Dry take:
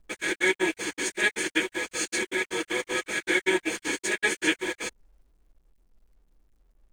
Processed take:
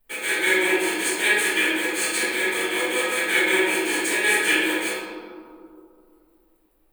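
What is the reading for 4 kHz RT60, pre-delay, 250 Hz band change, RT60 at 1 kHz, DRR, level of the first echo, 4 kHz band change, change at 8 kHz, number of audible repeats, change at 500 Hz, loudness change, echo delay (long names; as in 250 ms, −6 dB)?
1.0 s, 3 ms, +4.0 dB, 2.4 s, −11.0 dB, no echo audible, +6.5 dB, +6.0 dB, no echo audible, +5.0 dB, +6.5 dB, no echo audible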